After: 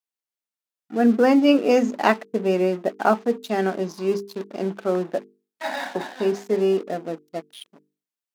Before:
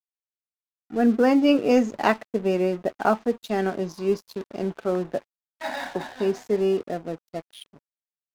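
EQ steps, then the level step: brick-wall FIR high-pass 160 Hz; hum notches 50/100/150/200/250/300/350/400/450 Hz; +2.5 dB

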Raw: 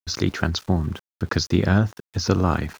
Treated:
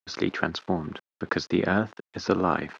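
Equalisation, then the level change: band-pass 260–3100 Hz; 0.0 dB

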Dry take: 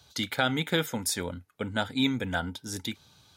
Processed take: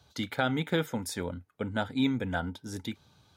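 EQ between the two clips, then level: treble shelf 2.1 kHz -9.5 dB; 0.0 dB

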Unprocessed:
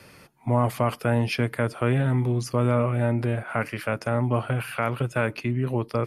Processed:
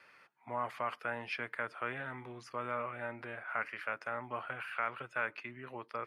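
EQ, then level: band-pass filter 1.6 kHz, Q 1.3; -5.0 dB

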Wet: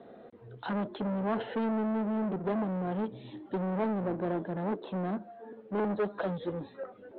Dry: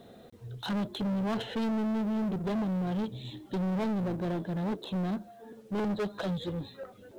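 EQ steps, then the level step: low-pass 4.1 kHz 24 dB/octave; distance through air 140 m; three-band isolator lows -14 dB, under 220 Hz, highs -12 dB, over 2.2 kHz; +3.5 dB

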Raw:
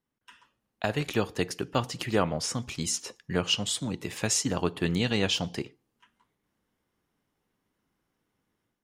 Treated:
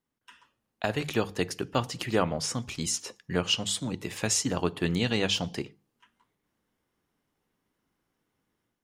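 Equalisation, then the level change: hum notches 50/100/150/200 Hz; 0.0 dB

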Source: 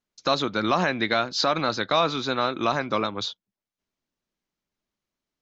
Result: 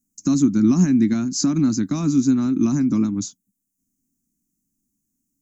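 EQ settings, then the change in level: FFT filter 110 Hz 0 dB, 280 Hz +9 dB, 500 Hz -28 dB, 820 Hz -23 dB, 2.5 kHz -21 dB, 3.6 kHz -29 dB, 6.9 kHz +9 dB; +8.5 dB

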